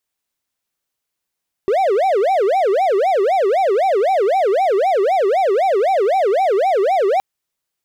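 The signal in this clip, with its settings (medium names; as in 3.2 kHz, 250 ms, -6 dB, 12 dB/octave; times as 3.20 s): siren wail 380–783 Hz 3.9 per s triangle -10.5 dBFS 5.52 s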